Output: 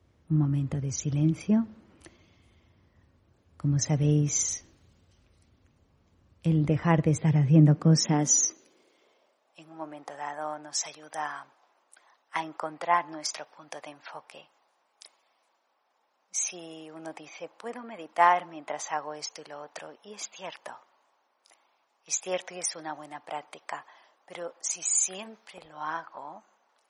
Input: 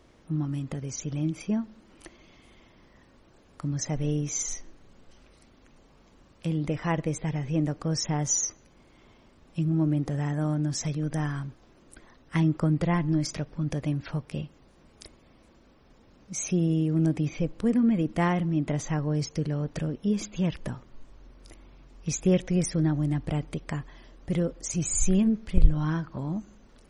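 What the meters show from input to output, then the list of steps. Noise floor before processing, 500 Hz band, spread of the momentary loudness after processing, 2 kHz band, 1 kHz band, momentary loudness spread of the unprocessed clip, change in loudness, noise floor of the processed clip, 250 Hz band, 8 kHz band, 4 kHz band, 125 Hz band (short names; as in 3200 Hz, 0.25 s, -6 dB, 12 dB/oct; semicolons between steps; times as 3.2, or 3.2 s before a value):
-58 dBFS, -1.5 dB, 21 LU, +2.5 dB, +7.5 dB, 11 LU, +1.0 dB, -72 dBFS, -3.5 dB, +3.5 dB, +2.5 dB, -1.0 dB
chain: high-pass sweep 82 Hz -> 820 Hz, 6.97–9.7; three-band expander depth 40%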